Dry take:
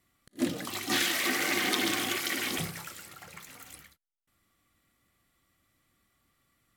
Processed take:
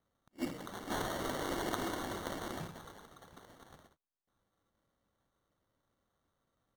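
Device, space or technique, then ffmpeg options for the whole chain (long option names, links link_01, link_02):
crushed at another speed: -af "asetrate=35280,aresample=44100,acrusher=samples=22:mix=1:aa=0.000001,asetrate=55125,aresample=44100,volume=-8.5dB"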